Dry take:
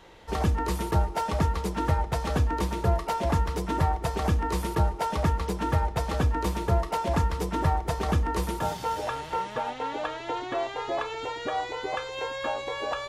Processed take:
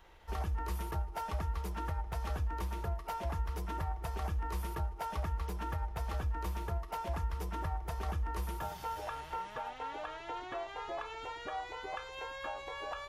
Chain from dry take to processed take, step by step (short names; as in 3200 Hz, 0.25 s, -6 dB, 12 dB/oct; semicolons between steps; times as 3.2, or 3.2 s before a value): compressor, threshold -26 dBFS, peak gain reduction 8 dB; graphic EQ 125/250/500/1000/2000/4000/8000 Hz -10/-12/-9/-4/-5/-8/-10 dB; ending taper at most 150 dB/s